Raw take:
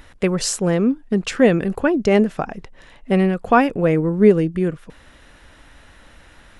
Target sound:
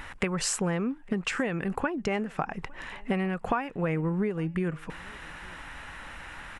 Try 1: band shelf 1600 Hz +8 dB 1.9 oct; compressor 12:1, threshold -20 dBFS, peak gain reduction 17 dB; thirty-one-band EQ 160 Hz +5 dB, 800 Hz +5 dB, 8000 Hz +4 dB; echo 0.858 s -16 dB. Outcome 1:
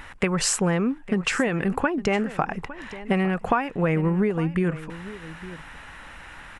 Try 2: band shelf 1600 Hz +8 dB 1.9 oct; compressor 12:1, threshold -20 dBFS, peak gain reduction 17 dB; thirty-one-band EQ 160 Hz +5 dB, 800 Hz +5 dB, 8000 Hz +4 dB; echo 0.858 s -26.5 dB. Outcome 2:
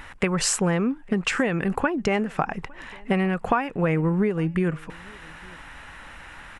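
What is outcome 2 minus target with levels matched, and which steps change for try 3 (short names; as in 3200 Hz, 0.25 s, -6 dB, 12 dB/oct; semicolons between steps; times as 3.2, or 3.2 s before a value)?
compressor: peak gain reduction -6 dB
change: compressor 12:1, threshold -26.5 dBFS, peak gain reduction 23 dB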